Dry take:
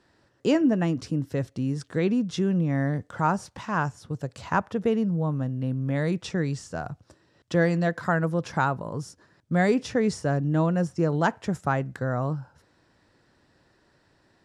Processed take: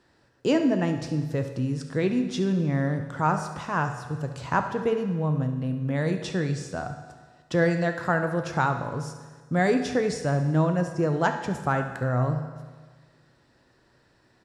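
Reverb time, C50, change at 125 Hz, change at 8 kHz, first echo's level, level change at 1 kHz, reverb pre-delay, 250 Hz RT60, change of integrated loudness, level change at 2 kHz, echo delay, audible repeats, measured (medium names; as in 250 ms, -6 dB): 1.5 s, 7.5 dB, +0.5 dB, +1.0 dB, -14.5 dB, +1.0 dB, 8 ms, 1.5 s, 0.0 dB, +1.0 dB, 71 ms, 1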